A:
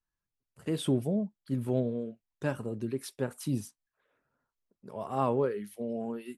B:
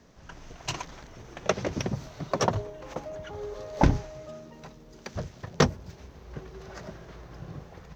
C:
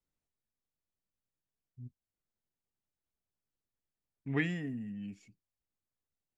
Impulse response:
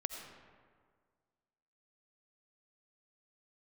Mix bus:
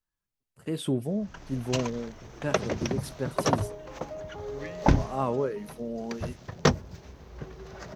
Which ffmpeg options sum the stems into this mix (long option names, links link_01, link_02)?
-filter_complex "[0:a]volume=0dB[link_01];[1:a]adelay=1050,volume=0dB[link_02];[2:a]adelay=250,volume=-10dB[link_03];[link_01][link_02][link_03]amix=inputs=3:normalize=0"